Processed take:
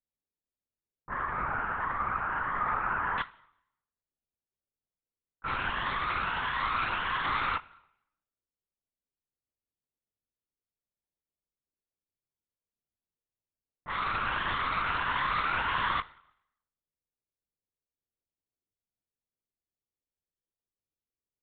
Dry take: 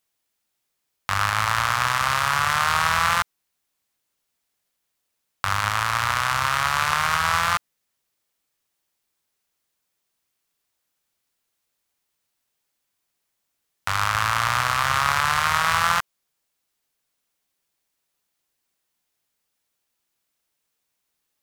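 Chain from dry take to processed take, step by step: drifting ripple filter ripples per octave 1.2, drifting +1.5 Hz, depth 7 dB; low-pass 1.7 kHz 24 dB/octave, from 3.19 s 7.6 kHz; level-controlled noise filter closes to 430 Hz, open at -18 dBFS; flange 0.57 Hz, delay 6.8 ms, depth 3.1 ms, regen +63%; plate-style reverb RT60 0.77 s, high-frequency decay 0.95×, DRR 17.5 dB; LPC vocoder at 8 kHz whisper; trim -5 dB

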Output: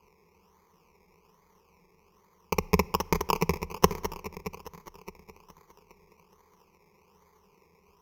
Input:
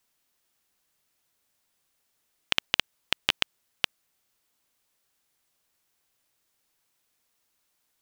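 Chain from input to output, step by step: in parallel at -1.5 dB: compressor with a negative ratio -29 dBFS, ratio -0.5; on the sum: comb of notches 300 Hz; tape echo 207 ms, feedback 82%, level -5.5 dB, low-pass 4.4 kHz; decimation with a swept rate 23×, swing 60% 1.2 Hz; rippled EQ curve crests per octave 0.8, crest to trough 17 dB; on a send at -22 dB: reverberation RT60 1.3 s, pre-delay 10 ms; on the sum: trim -1.5 dB

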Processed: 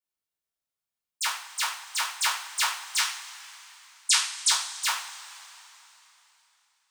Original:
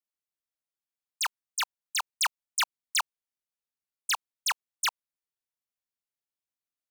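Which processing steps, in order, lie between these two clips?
2.98–4.49 s: frequency weighting ITU-R 468; peak limiter -15 dBFS, peak gain reduction 5 dB; two-slope reverb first 0.46 s, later 3.4 s, from -19 dB, DRR -8 dB; trim -6 dB

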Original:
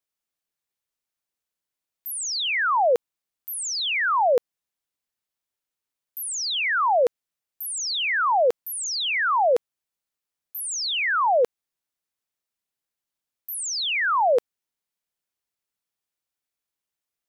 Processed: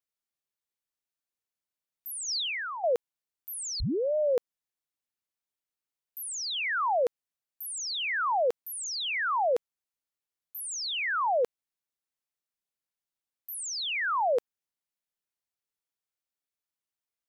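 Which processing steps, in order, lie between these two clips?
2.28–2.84 s: compressor with a negative ratio -27 dBFS, ratio -1; 3.80 s: tape start 0.55 s; trim -6.5 dB

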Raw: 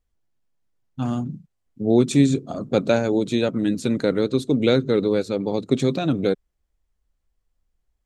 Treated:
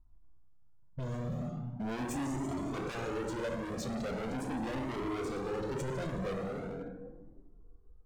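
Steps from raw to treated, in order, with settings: companding laws mixed up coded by mu; touch-sensitive phaser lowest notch 470 Hz, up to 3.9 kHz, full sweep at -17 dBFS; plate-style reverb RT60 1.7 s, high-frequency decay 0.8×, DRR 2.5 dB; saturation -18 dBFS, distortion -9 dB; peak limiter -27 dBFS, peak gain reduction 9 dB; level-controlled noise filter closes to 590 Hz, open at -29.5 dBFS; overload inside the chain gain 34.5 dB; Shepard-style flanger rising 0.4 Hz; trim +5 dB

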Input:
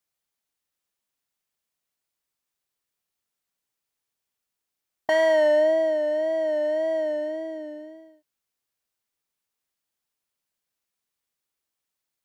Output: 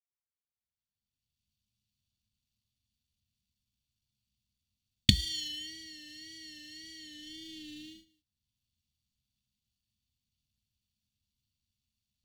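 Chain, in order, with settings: median filter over 25 samples; recorder AGC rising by 21 dB/s; gate -27 dBFS, range -19 dB; elliptic band-stop 180–3500 Hz, stop band 80 dB; reverberation RT60 0.10 s, pre-delay 3 ms, DRR 13.5 dB; trim -1 dB

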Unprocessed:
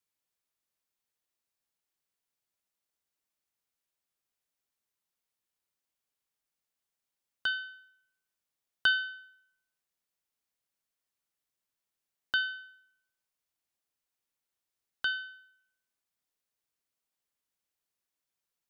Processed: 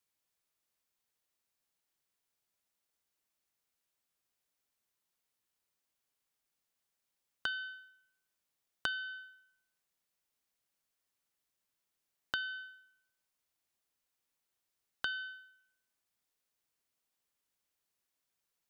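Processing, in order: compression 12:1, threshold -35 dBFS, peak gain reduction 14.5 dB; trim +2 dB

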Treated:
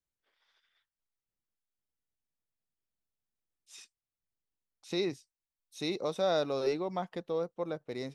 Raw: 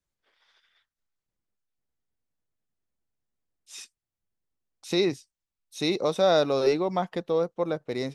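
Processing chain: 3.76–4.95 s: treble shelf 10 kHz -9 dB; trim -8 dB

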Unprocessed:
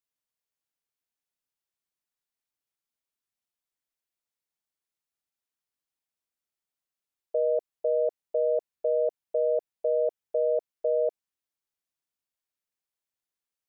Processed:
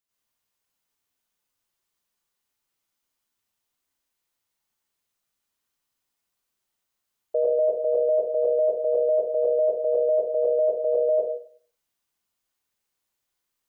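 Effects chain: plate-style reverb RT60 0.53 s, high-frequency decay 0.9×, pre-delay 80 ms, DRR -6.5 dB; trim +2.5 dB

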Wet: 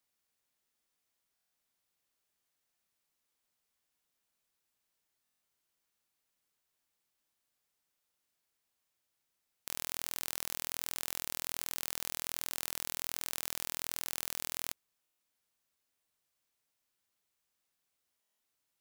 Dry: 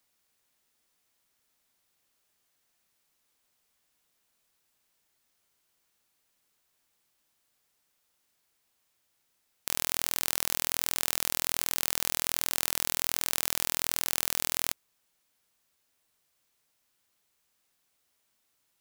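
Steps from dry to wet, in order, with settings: buffer glitch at 1.34/5.23/11.08/15.01/18.21 s, samples 1024, times 7; trim -8.5 dB

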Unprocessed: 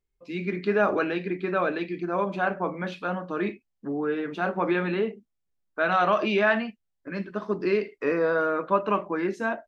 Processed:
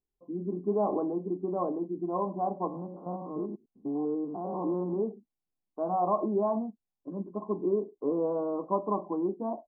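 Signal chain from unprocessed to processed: 2.67–4.93 s: spectrogram pixelated in time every 100 ms; rippled Chebyshev low-pass 1.1 kHz, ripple 6 dB; bass shelf 130 Hz -5 dB

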